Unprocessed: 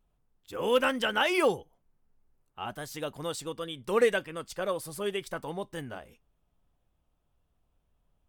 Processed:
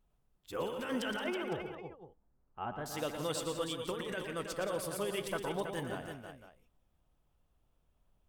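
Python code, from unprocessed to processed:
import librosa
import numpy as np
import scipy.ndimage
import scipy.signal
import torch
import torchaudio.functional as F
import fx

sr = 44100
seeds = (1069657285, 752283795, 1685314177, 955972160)

p1 = fx.lowpass(x, sr, hz=1500.0, slope=12, at=(1.24, 2.86))
p2 = fx.over_compress(p1, sr, threshold_db=-32.0, ratio=-1.0)
p3 = p2 + fx.echo_multitap(p2, sr, ms=(116, 173, 243, 323, 508), db=(-8.5, -11.5, -19.5, -7.5, -14.5), dry=0)
y = p3 * 10.0 ** (-5.0 / 20.0)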